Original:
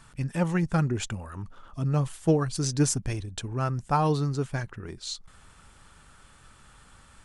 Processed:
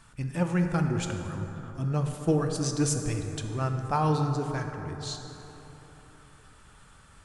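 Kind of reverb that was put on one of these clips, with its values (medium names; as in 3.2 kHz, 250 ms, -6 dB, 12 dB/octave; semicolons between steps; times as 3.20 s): plate-style reverb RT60 3.9 s, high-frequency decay 0.4×, DRR 4 dB; trim -2.5 dB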